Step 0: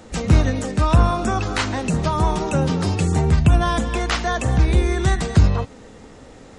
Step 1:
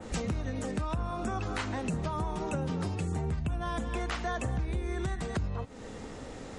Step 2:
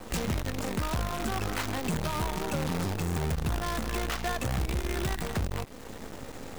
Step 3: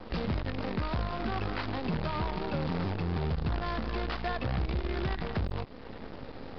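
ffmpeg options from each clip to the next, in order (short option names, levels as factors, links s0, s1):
-af "adynamicequalizer=threshold=0.00631:dfrequency=5100:dqfactor=0.86:tfrequency=5100:tqfactor=0.86:attack=5:release=100:ratio=0.375:range=2.5:mode=cutabove:tftype=bell,alimiter=limit=0.211:level=0:latency=1:release=478,acompressor=threshold=0.02:ratio=2.5"
-af "acrusher=bits=6:dc=4:mix=0:aa=0.000001,asoftclip=type=tanh:threshold=0.0376,volume=1.78"
-filter_complex "[0:a]asplit=2[s0][s1];[s1]acrusher=samples=11:mix=1:aa=0.000001:lfo=1:lforange=6.6:lforate=1.3,volume=0.501[s2];[s0][s2]amix=inputs=2:normalize=0,aresample=11025,aresample=44100,volume=0.596"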